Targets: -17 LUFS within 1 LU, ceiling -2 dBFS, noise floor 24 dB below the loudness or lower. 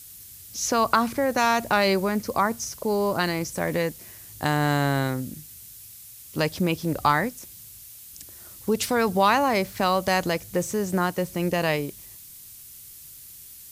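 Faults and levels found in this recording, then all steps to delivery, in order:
dropouts 1; longest dropout 1.1 ms; noise floor -45 dBFS; noise floor target -49 dBFS; loudness -24.5 LUFS; peak -5.0 dBFS; loudness target -17.0 LUFS
-> interpolate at 3.68, 1.1 ms; denoiser 6 dB, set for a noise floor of -45 dBFS; gain +7.5 dB; limiter -2 dBFS

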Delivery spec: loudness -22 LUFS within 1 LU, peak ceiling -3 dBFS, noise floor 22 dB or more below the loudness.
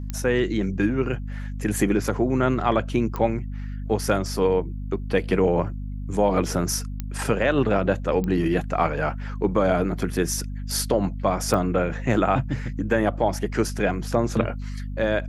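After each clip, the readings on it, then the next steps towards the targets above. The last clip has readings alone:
clicks 5; hum 50 Hz; harmonics up to 250 Hz; hum level -29 dBFS; loudness -24.0 LUFS; peak -6.0 dBFS; loudness target -22.0 LUFS
-> de-click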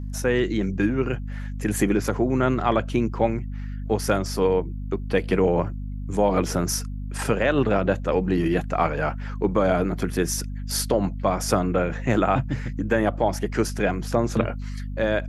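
clicks 0; hum 50 Hz; harmonics up to 250 Hz; hum level -29 dBFS
-> de-hum 50 Hz, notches 5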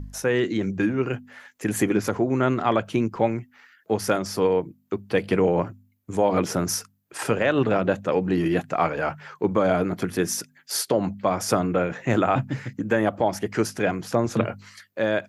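hum none; loudness -24.5 LUFS; peak -6.5 dBFS; loudness target -22.0 LUFS
-> gain +2.5 dB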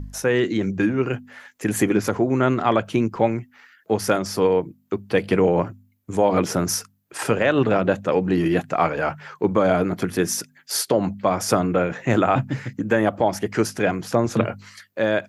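loudness -22.0 LUFS; peak -4.0 dBFS; noise floor -61 dBFS

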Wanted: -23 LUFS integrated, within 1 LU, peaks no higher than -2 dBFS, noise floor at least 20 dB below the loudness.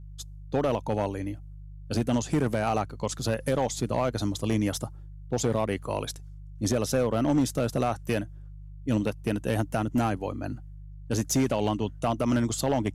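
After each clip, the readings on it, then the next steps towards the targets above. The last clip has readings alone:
clipped 1.5%; flat tops at -18.0 dBFS; hum 50 Hz; harmonics up to 150 Hz; hum level -40 dBFS; loudness -28.5 LUFS; peak -18.0 dBFS; loudness target -23.0 LUFS
-> clip repair -18 dBFS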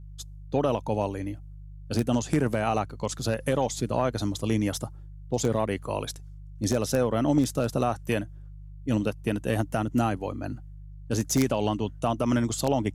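clipped 0.0%; hum 50 Hz; harmonics up to 150 Hz; hum level -40 dBFS
-> de-hum 50 Hz, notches 3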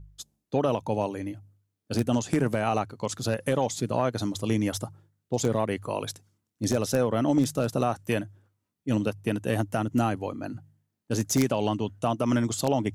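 hum none; loudness -28.0 LUFS; peak -9.0 dBFS; loudness target -23.0 LUFS
-> gain +5 dB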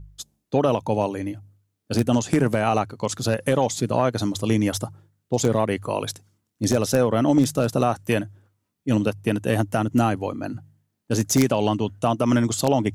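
loudness -23.0 LUFS; peak -4.0 dBFS; noise floor -77 dBFS

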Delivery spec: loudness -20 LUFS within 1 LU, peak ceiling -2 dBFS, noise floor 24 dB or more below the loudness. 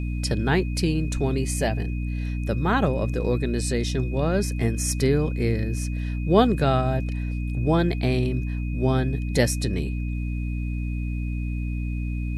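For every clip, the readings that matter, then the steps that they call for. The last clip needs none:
hum 60 Hz; harmonics up to 300 Hz; hum level -25 dBFS; steady tone 2500 Hz; tone level -43 dBFS; loudness -25.0 LUFS; peak -5.0 dBFS; loudness target -20.0 LUFS
-> de-hum 60 Hz, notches 5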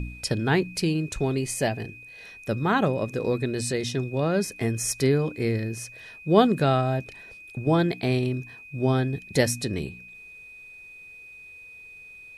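hum none; steady tone 2500 Hz; tone level -43 dBFS
-> notch 2500 Hz, Q 30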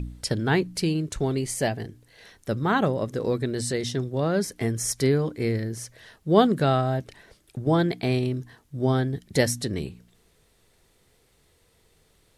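steady tone none; loudness -25.5 LUFS; peak -6.0 dBFS; loudness target -20.0 LUFS
-> gain +5.5 dB; limiter -2 dBFS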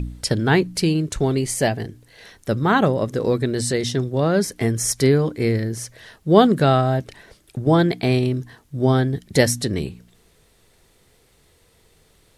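loudness -20.0 LUFS; peak -2.0 dBFS; noise floor -58 dBFS

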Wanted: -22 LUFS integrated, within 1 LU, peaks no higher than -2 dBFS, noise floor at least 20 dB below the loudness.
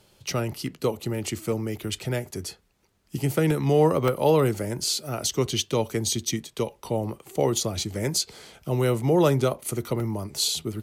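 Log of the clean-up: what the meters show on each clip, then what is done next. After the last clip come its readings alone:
dropouts 4; longest dropout 1.6 ms; loudness -25.5 LUFS; peak -8.0 dBFS; loudness target -22.0 LUFS
-> interpolate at 1.52/3.51/4.08/10, 1.6 ms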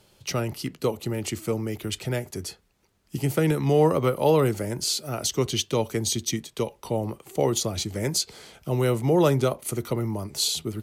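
dropouts 0; loudness -25.5 LUFS; peak -8.0 dBFS; loudness target -22.0 LUFS
-> gain +3.5 dB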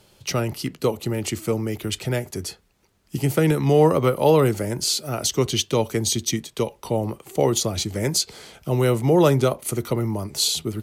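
loudness -22.0 LUFS; peak -4.5 dBFS; noise floor -60 dBFS

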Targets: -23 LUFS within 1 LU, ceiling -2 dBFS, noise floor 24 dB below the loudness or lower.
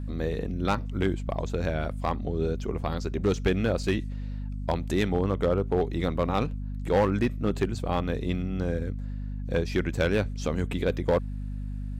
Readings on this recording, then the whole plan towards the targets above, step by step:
clipped 0.7%; flat tops at -16.5 dBFS; hum 50 Hz; harmonics up to 250 Hz; hum level -31 dBFS; loudness -28.5 LUFS; peak -16.5 dBFS; loudness target -23.0 LUFS
-> clip repair -16.5 dBFS; notches 50/100/150/200/250 Hz; gain +5.5 dB

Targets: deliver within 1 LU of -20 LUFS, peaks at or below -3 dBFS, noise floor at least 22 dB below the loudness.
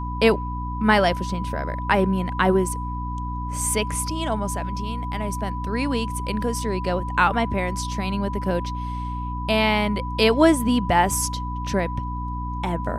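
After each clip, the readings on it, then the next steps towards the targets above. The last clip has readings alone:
hum 60 Hz; harmonics up to 300 Hz; hum level -27 dBFS; steady tone 990 Hz; tone level -31 dBFS; loudness -23.5 LUFS; peak -4.0 dBFS; loudness target -20.0 LUFS
-> de-hum 60 Hz, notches 5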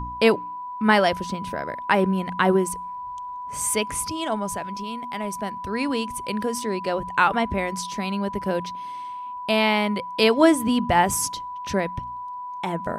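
hum none; steady tone 990 Hz; tone level -31 dBFS
-> notch 990 Hz, Q 30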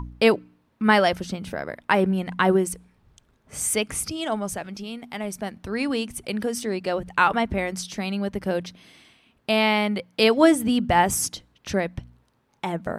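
steady tone none; loudness -23.5 LUFS; peak -4.0 dBFS; loudness target -20.0 LUFS
-> gain +3.5 dB; limiter -3 dBFS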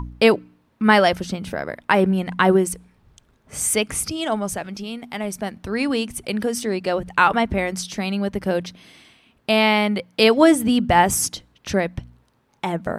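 loudness -20.5 LUFS; peak -3.0 dBFS; noise floor -63 dBFS

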